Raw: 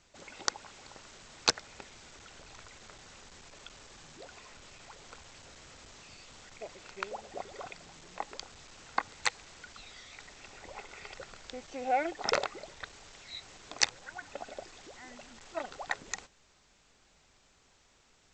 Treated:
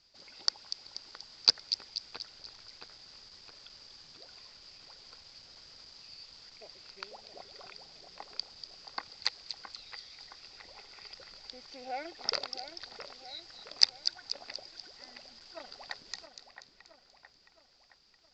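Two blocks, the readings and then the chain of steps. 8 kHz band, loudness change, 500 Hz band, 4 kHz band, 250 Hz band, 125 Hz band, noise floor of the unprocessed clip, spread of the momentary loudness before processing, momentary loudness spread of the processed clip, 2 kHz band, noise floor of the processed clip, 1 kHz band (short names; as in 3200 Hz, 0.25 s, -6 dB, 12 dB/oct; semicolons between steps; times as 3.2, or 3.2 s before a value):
-6.5 dB, +2.0 dB, -9.0 dB, +6.0 dB, -9.5 dB, n/a, -66 dBFS, 21 LU, 18 LU, -8.0 dB, -65 dBFS, -9.0 dB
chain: synth low-pass 4800 Hz, resonance Q 13; on a send: split-band echo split 2800 Hz, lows 0.668 s, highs 0.241 s, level -9 dB; on the sum: gain -10 dB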